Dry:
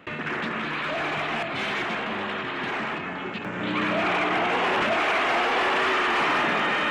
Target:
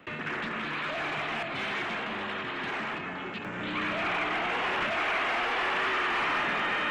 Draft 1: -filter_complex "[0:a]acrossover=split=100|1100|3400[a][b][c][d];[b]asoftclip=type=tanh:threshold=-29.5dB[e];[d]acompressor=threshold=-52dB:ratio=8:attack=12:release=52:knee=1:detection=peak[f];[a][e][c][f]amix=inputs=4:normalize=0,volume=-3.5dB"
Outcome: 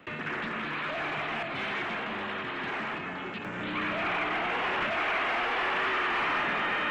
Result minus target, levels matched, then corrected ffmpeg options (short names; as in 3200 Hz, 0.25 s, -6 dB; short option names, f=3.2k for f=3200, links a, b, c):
compressor: peak gain reduction +6 dB
-filter_complex "[0:a]acrossover=split=100|1100|3400[a][b][c][d];[b]asoftclip=type=tanh:threshold=-29.5dB[e];[d]acompressor=threshold=-45dB:ratio=8:attack=12:release=52:knee=1:detection=peak[f];[a][e][c][f]amix=inputs=4:normalize=0,volume=-3.5dB"